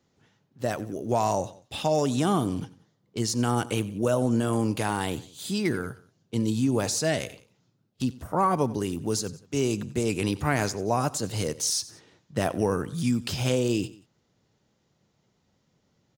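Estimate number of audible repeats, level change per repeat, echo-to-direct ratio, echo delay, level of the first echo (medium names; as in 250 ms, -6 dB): 2, -6.0 dB, -18.0 dB, 91 ms, -19.0 dB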